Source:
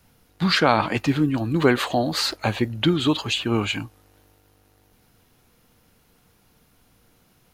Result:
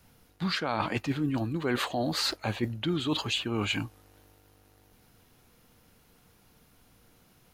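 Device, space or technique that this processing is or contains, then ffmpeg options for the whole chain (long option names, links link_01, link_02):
compression on the reversed sound: -af "areverse,acompressor=threshold=-24dB:ratio=8,areverse,volume=-1.5dB"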